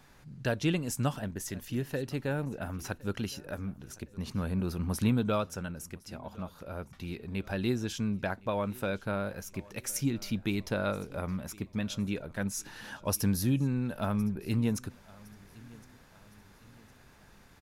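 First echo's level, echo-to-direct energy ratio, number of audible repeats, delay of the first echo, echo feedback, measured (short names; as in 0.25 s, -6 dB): -23.0 dB, -22.0 dB, 2, 1.062 s, 44%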